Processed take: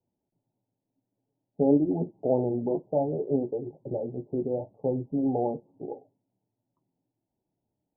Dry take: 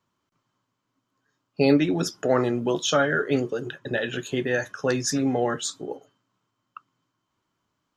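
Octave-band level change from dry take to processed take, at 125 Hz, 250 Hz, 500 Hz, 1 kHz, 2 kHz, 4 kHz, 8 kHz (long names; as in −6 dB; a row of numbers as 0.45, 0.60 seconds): −3.5 dB, −2.5 dB, −3.0 dB, −6.5 dB, below −40 dB, below −40 dB, below −40 dB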